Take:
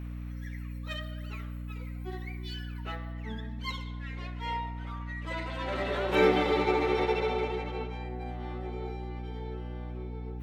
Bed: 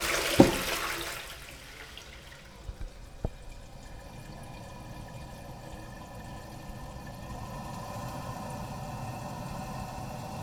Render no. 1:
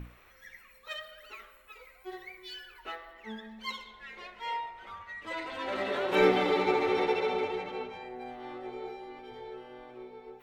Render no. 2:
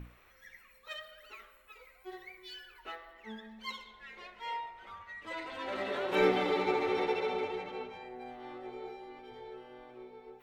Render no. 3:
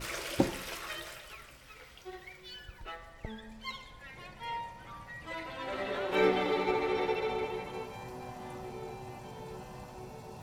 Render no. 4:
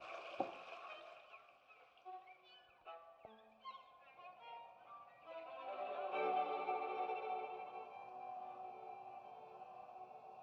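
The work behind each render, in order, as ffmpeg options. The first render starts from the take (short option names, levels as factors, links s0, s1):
-af "bandreject=f=60:t=h:w=6,bandreject=f=120:t=h:w=6,bandreject=f=180:t=h:w=6,bandreject=f=240:t=h:w=6,bandreject=f=300:t=h:w=6"
-af "volume=0.668"
-filter_complex "[1:a]volume=0.335[s0];[0:a][s0]amix=inputs=2:normalize=0"
-filter_complex "[0:a]acrossover=split=300|800|7400[s0][s1][s2][s3];[s3]acrusher=samples=15:mix=1:aa=0.000001:lfo=1:lforange=9:lforate=2.6[s4];[s0][s1][s2][s4]amix=inputs=4:normalize=0,asplit=3[s5][s6][s7];[s5]bandpass=f=730:t=q:w=8,volume=1[s8];[s6]bandpass=f=1090:t=q:w=8,volume=0.501[s9];[s7]bandpass=f=2440:t=q:w=8,volume=0.355[s10];[s8][s9][s10]amix=inputs=3:normalize=0"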